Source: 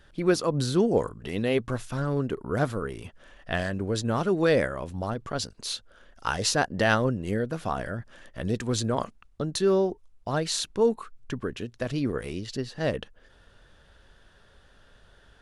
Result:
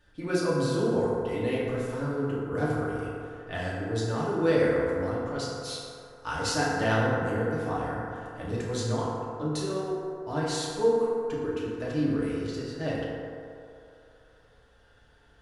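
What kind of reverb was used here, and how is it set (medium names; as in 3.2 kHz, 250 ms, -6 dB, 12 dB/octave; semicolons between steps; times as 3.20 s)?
FDN reverb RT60 2.7 s, low-frequency decay 0.7×, high-frequency decay 0.35×, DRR -7.5 dB; trim -10 dB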